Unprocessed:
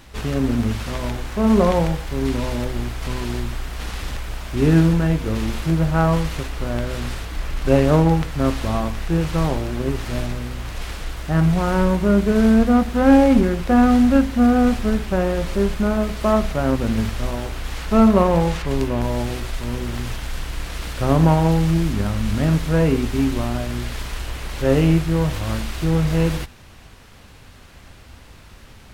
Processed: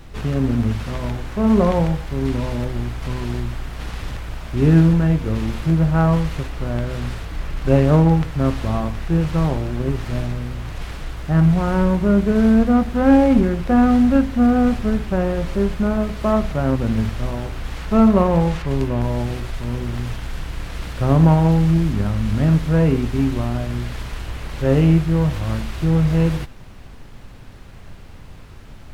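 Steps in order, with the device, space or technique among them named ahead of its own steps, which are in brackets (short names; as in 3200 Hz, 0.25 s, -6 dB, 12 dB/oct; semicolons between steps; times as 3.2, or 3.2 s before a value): car interior (bell 130 Hz +5.5 dB 0.99 oct; high shelf 3900 Hz -6.5 dB; brown noise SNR 21 dB); gain -1 dB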